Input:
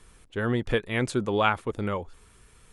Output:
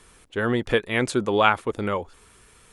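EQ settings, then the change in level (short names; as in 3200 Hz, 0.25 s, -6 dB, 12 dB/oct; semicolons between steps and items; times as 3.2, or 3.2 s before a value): low shelf 64 Hz -11 dB; bell 140 Hz -3.5 dB 1.5 oct; +5.0 dB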